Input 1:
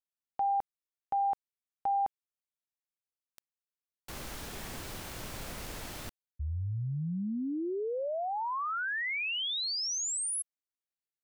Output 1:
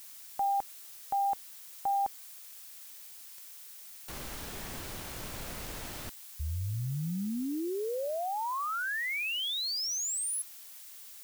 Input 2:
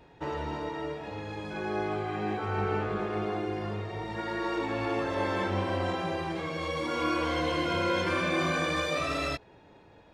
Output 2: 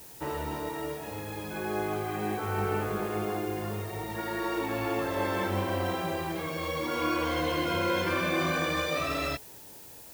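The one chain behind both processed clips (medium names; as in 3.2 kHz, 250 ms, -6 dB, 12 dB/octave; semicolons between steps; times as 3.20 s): added noise blue -49 dBFS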